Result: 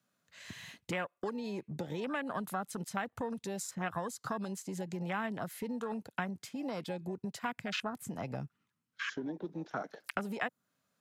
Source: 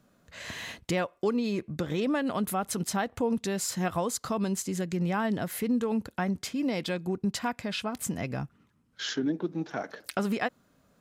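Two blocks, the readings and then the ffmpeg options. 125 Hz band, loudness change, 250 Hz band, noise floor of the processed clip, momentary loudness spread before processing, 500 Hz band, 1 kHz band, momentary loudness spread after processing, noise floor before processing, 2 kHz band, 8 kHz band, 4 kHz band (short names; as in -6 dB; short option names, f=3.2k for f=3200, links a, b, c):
-8.5 dB, -8.0 dB, -10.0 dB, -84 dBFS, 8 LU, -8.0 dB, -5.5 dB, 5 LU, -67 dBFS, -3.5 dB, -11.0 dB, -8.5 dB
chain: -filter_complex "[0:a]afwtdn=0.0178,acrossover=split=110|1200|1900[a][b][c][d];[a]acrusher=bits=3:mix=0:aa=0.5[e];[e][b][c][d]amix=inputs=4:normalize=0,acrossover=split=460|2300|7800[f][g][h][i];[f]acompressor=threshold=-39dB:ratio=4[j];[g]acompressor=threshold=-39dB:ratio=4[k];[h]acompressor=threshold=-57dB:ratio=4[l];[i]acompressor=threshold=-58dB:ratio=4[m];[j][k][l][m]amix=inputs=4:normalize=0,equalizer=f=340:w=0.42:g=-11.5,volume=8.5dB"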